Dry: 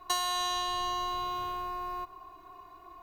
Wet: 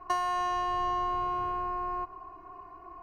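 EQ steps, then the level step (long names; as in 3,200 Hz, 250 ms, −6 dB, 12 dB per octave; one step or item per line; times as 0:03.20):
moving average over 12 samples
+4.5 dB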